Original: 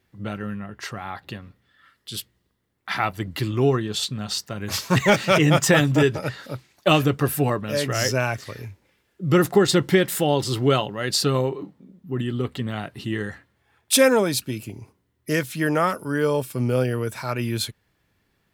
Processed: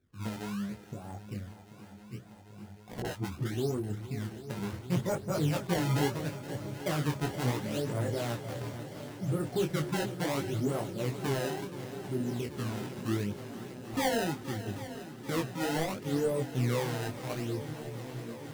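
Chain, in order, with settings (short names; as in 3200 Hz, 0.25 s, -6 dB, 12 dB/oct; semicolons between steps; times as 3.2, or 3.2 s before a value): Wiener smoothing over 41 samples; LPF 1000 Hz 12 dB/oct; in parallel at +1.5 dB: compressor, threshold -32 dBFS, peak gain reduction 18.5 dB; on the sum: limiter -12.5 dBFS, peak gain reduction 7.5 dB; decimation with a swept rate 22×, swing 160% 0.72 Hz; 3–3.54 dispersion highs, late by 47 ms, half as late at 460 Hz; on a send: swung echo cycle 0.788 s, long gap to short 1.5:1, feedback 75%, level -13.5 dB; on the sum: detuned doubles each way 13 cents; gain -5.5 dB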